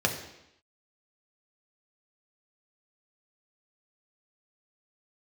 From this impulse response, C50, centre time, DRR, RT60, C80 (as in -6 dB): 8.5 dB, 21 ms, 1.5 dB, 0.85 s, 10.5 dB